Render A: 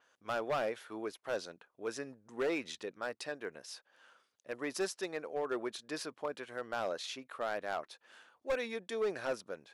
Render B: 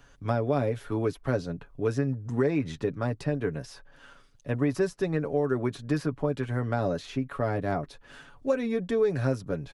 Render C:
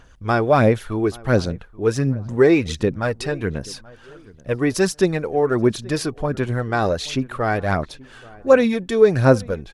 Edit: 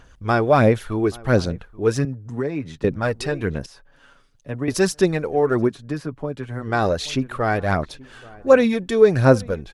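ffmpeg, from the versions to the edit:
-filter_complex "[1:a]asplit=3[s0][s1][s2];[2:a]asplit=4[s3][s4][s5][s6];[s3]atrim=end=2.052[s7];[s0]atrim=start=2.048:end=2.842[s8];[s4]atrim=start=2.838:end=3.662[s9];[s1]atrim=start=3.658:end=4.682[s10];[s5]atrim=start=4.678:end=5.73[s11];[s2]atrim=start=5.63:end=6.68[s12];[s6]atrim=start=6.58[s13];[s7][s8]acrossfade=d=0.004:c1=hsin:c2=hsin[s14];[s14][s9]acrossfade=d=0.004:c1=hsin:c2=hsin[s15];[s15][s10]acrossfade=d=0.004:c1=hsin:c2=hsin[s16];[s16][s11]acrossfade=d=0.004:c1=hsin:c2=hsin[s17];[s17][s12]acrossfade=d=0.1:c1=tri:c2=tri[s18];[s18][s13]acrossfade=d=0.1:c1=tri:c2=tri"

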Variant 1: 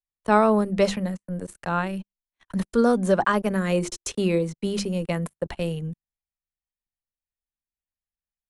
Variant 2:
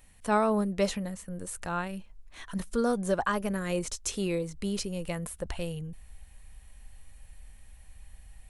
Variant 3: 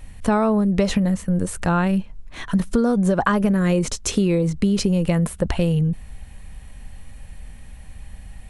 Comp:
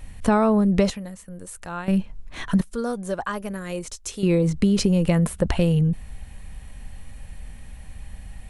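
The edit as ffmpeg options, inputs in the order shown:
-filter_complex "[1:a]asplit=2[s0][s1];[2:a]asplit=3[s2][s3][s4];[s2]atrim=end=0.902[s5];[s0]atrim=start=0.898:end=1.882[s6];[s3]atrim=start=1.878:end=2.612[s7];[s1]atrim=start=2.608:end=4.232[s8];[s4]atrim=start=4.228[s9];[s5][s6]acrossfade=d=0.004:c1=hsin:c2=hsin[s10];[s10][s7]acrossfade=d=0.004:c1=hsin:c2=hsin[s11];[s11][s8]acrossfade=d=0.004:c1=hsin:c2=hsin[s12];[s12][s9]acrossfade=d=0.004:c1=hsin:c2=hsin"

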